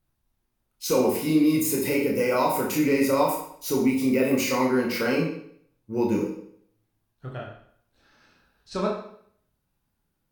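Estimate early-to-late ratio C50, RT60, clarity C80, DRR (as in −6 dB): 4.0 dB, 0.60 s, 8.0 dB, −2.0 dB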